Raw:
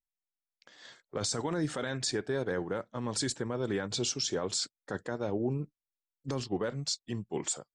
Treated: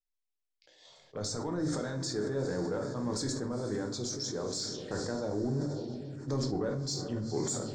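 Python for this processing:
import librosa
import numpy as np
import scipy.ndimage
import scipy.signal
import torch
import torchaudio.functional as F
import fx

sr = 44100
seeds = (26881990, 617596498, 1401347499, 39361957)

p1 = scipy.signal.sosfilt(scipy.signal.butter(2, 7700.0, 'lowpass', fs=sr, output='sos'), x)
p2 = p1 + fx.echo_diffused(p1, sr, ms=460, feedback_pct=46, wet_db=-13.0, dry=0)
p3 = fx.rider(p2, sr, range_db=5, speed_s=0.5)
p4 = fx.env_phaser(p3, sr, low_hz=180.0, high_hz=2800.0, full_db=-33.5)
p5 = 10.0 ** (-28.5 / 20.0) * np.tanh(p4 / 10.0 ** (-28.5 / 20.0))
p6 = p4 + F.gain(torch.from_numpy(p5), -7.0).numpy()
p7 = fx.room_shoebox(p6, sr, seeds[0], volume_m3=71.0, walls='mixed', distance_m=0.48)
p8 = fx.sustainer(p7, sr, db_per_s=30.0)
y = F.gain(torch.from_numpy(p8), -5.5).numpy()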